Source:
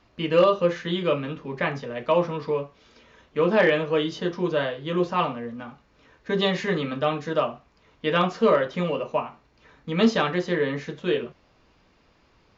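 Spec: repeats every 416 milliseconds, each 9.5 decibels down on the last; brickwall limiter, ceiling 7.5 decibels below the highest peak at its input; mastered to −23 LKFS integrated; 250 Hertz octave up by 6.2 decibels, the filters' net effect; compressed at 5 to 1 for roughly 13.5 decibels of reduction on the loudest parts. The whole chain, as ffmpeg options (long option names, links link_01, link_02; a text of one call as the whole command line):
ffmpeg -i in.wav -af "equalizer=frequency=250:width_type=o:gain=8.5,acompressor=threshold=-22dB:ratio=5,alimiter=limit=-20.5dB:level=0:latency=1,aecho=1:1:416|832|1248|1664:0.335|0.111|0.0365|0.012,volume=7dB" out.wav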